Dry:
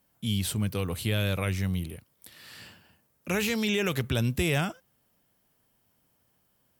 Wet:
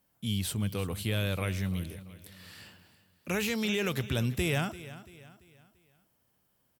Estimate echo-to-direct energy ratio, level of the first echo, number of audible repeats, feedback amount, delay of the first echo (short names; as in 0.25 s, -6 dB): -15.0 dB, -16.0 dB, 3, 41%, 0.34 s